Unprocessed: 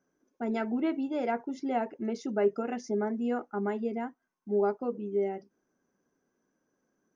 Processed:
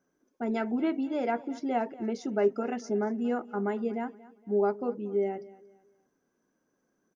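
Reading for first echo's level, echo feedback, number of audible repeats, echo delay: -19.5 dB, 32%, 2, 232 ms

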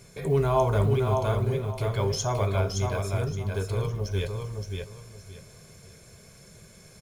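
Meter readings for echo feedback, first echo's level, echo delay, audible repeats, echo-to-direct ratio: 24%, -4.5 dB, 570 ms, 3, -4.0 dB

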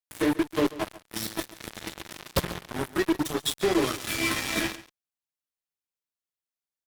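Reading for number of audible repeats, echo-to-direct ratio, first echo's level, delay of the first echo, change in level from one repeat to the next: 1, -17.0 dB, -17.0 dB, 139 ms, no regular repeats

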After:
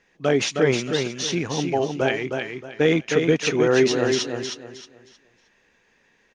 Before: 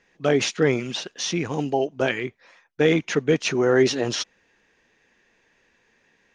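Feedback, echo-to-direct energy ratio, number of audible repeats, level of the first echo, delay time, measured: 28%, -4.5 dB, 3, -5.0 dB, 313 ms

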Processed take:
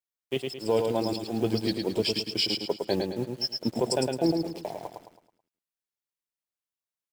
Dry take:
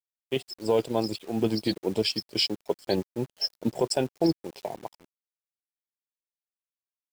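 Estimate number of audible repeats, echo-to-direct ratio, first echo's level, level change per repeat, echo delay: 4, -4.0 dB, -4.5 dB, -8.0 dB, 108 ms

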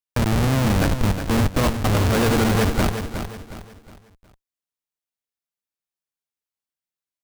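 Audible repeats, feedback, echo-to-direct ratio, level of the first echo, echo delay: 4, 37%, -8.0 dB, -8.5 dB, 363 ms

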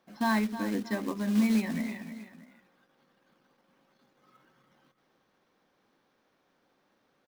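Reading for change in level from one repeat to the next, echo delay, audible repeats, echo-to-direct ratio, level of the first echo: -8.0 dB, 315 ms, 2, -11.0 dB, -11.5 dB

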